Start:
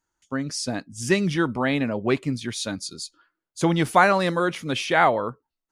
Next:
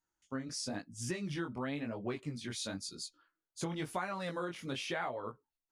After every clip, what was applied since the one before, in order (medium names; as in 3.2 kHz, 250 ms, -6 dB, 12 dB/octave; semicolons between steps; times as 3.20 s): chorus 0.98 Hz, delay 16 ms, depth 7.9 ms; compression 5:1, threshold -29 dBFS, peak gain reduction 13.5 dB; trim -6 dB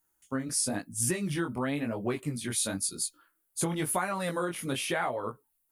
resonant high shelf 7.9 kHz +13 dB, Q 1.5; trim +7 dB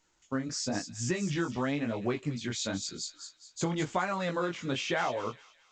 feedback echo behind a high-pass 208 ms, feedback 39%, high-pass 3.1 kHz, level -7 dB; A-law 128 kbps 16 kHz